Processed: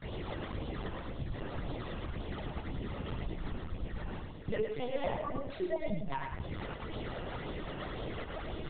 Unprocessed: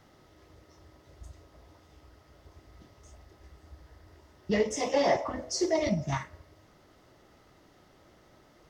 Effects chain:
variable-slope delta modulation 64 kbit/s
all-pass phaser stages 12, 1.9 Hz, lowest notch 200–1,800 Hz
noise gate with hold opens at −53 dBFS
reversed playback
upward compression, threshold −37 dBFS
reversed playback
single-tap delay 163 ms −21.5 dB
downward compressor 4 to 1, threshold −45 dBFS, peak gain reduction 19.5 dB
linear-prediction vocoder at 8 kHz pitch kept
on a send: single-tap delay 108 ms −6.5 dB
on the sum: level +10 dB

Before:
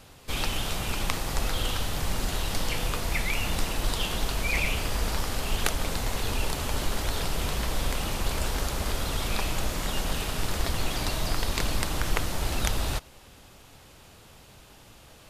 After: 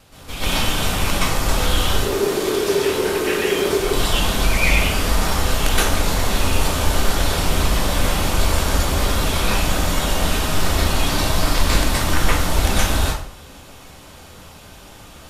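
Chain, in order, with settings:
0:01.93–0:03.80: ring modulation 400 Hz
pitch vibrato 0.62 Hz 5.1 cents
dense smooth reverb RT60 0.53 s, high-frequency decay 0.75×, pre-delay 110 ms, DRR −10 dB

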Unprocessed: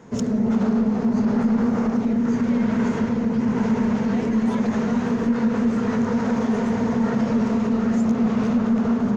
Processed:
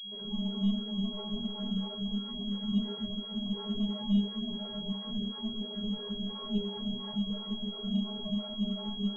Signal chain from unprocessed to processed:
two-band tremolo in antiphase 2.9 Hz, depth 100%, crossover 400 Hz
gain into a clipping stage and back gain 22.5 dB
spectral tilt −3 dB per octave
stiff-string resonator 200 Hz, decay 0.33 s, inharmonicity 0.008
granular cloud 188 ms, grains 20 per second, spray 10 ms, pitch spread up and down by 0 semitones
parametric band 290 Hz −12 dB 0.28 octaves
switching amplifier with a slow clock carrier 3,300 Hz
level +3 dB

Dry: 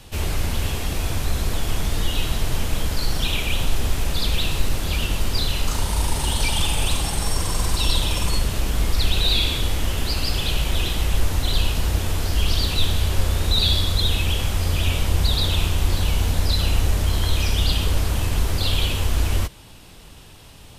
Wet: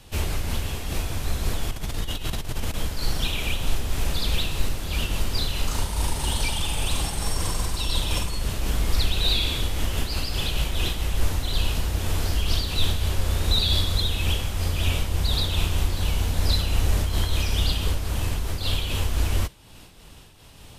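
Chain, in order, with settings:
0:01.71–0:02.74: compressor whose output falls as the input rises −23 dBFS, ratio −1
amplitude modulation by smooth noise, depth 65%

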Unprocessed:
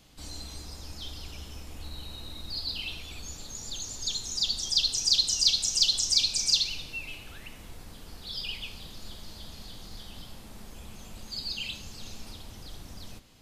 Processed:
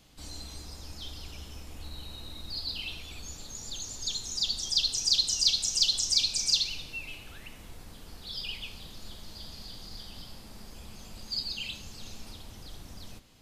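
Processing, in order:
0:09.35–0:11.43: parametric band 4,800 Hz +8.5 dB 0.22 octaves
level −1.5 dB

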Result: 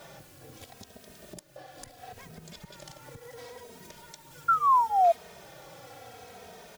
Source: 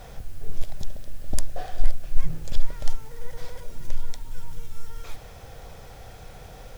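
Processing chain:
0:00.84–0:03.28: delay that plays each chunk backwards 257 ms, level −4 dB
high-pass filter 200 Hz 12 dB per octave
downward compressor 12 to 1, threshold −42 dBFS, peak gain reduction 17 dB
0:04.48–0:05.12: sound drawn into the spectrogram fall 660–1,400 Hz −22 dBFS
barber-pole flanger 2.9 ms −0.73 Hz
level +3 dB

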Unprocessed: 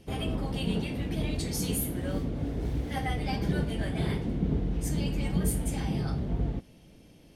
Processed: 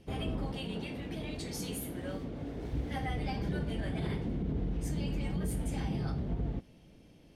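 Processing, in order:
high-shelf EQ 6,700 Hz −8 dB
brickwall limiter −22.5 dBFS, peak gain reduction 6.5 dB
0:00.51–0:02.73: low-shelf EQ 190 Hz −8.5 dB
level −3 dB

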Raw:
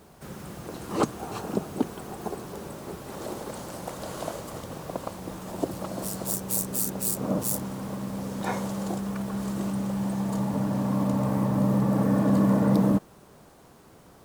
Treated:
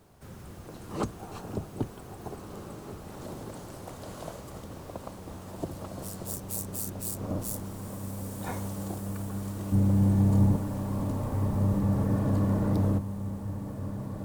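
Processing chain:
sub-octave generator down 1 octave, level +1 dB
0:09.72–0:10.56: low-shelf EQ 480 Hz +12 dB
feedback delay with all-pass diffusion 1,685 ms, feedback 51%, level −10 dB
level −7.5 dB

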